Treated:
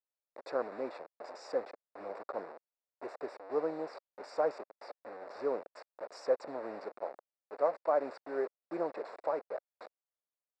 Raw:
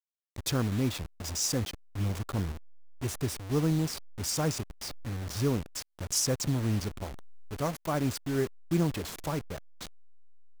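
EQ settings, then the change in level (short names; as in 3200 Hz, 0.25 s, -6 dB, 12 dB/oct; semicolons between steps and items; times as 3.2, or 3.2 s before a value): running mean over 14 samples; ladder high-pass 470 Hz, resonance 50%; air absorption 110 m; +8.5 dB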